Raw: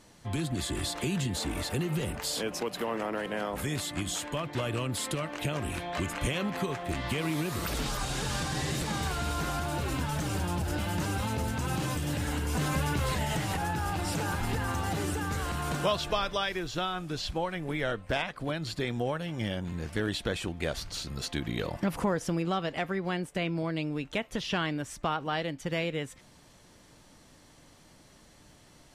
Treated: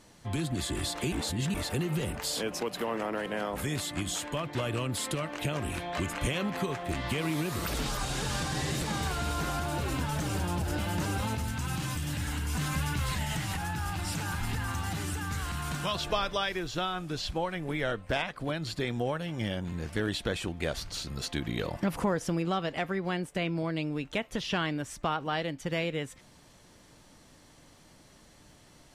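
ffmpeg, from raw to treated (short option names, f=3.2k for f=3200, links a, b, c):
-filter_complex "[0:a]asettb=1/sr,asplit=3[a][b][c];[a]atrim=end=11.354[d];[b]atrim=start=11.35:end=15.95,asetpts=PTS-STARTPTS,afade=t=in:d=0.004:c=qsin,afade=t=out:st=4.596:d=0.004:c=qsin,equalizer=f=480:t=o:w=1.4:g=-11[e];[c]atrim=start=15.946[f];[d][e]acrossfade=d=0.004:c1=hsin:c2=qsin[g];[g][f]acrossfade=d=0.004:c1=qsin:c2=hsin,asplit=3[h][i][j];[h]atrim=end=1.122[k];[i]atrim=start=1.118:end=1.542,asetpts=PTS-STARTPTS,areverse[l];[j]atrim=start=1.538[m];[k][l]acrossfade=d=0.004:c1=hsin:c2=hsin[n];[n][m]acrossfade=d=0.004:c1=hsin:c2=hsin"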